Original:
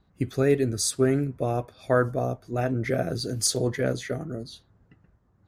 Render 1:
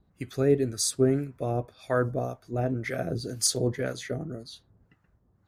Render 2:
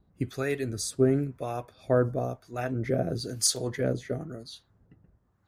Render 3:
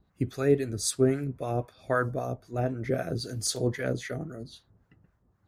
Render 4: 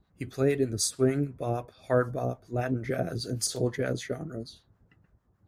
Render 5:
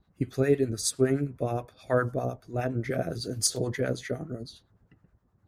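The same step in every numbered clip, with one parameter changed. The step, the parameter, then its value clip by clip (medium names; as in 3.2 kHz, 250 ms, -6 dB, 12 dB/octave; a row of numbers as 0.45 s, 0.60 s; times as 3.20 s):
harmonic tremolo, rate: 1.9 Hz, 1 Hz, 3.8 Hz, 6.6 Hz, 9.7 Hz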